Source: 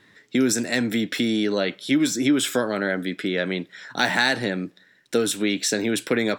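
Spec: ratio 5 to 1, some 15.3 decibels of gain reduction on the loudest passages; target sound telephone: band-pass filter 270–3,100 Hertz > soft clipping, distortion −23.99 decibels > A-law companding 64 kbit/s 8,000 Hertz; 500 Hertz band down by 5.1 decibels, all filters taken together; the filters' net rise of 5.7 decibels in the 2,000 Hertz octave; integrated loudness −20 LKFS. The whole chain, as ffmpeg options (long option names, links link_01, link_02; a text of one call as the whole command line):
ffmpeg -i in.wav -af "equalizer=frequency=500:width_type=o:gain=-6,equalizer=frequency=2000:width_type=o:gain=8,acompressor=threshold=-29dB:ratio=5,highpass=270,lowpass=3100,asoftclip=threshold=-19dB,volume=14dB" -ar 8000 -c:a pcm_alaw out.wav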